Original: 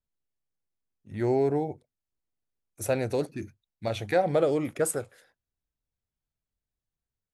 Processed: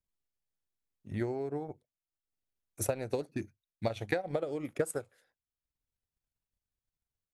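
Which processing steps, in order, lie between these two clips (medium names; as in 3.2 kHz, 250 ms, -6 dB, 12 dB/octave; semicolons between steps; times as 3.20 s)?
compression 10:1, threshold -28 dBFS, peak gain reduction 10.5 dB; transient shaper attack +7 dB, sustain -7 dB; trim -4 dB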